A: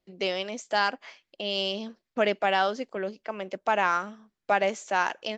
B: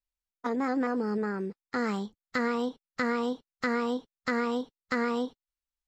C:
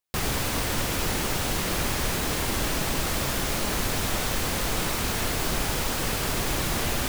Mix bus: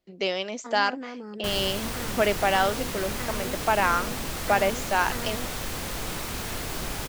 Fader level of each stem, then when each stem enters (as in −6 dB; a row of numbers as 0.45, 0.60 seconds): +1.5, −9.0, −5.5 decibels; 0.00, 0.20, 1.30 seconds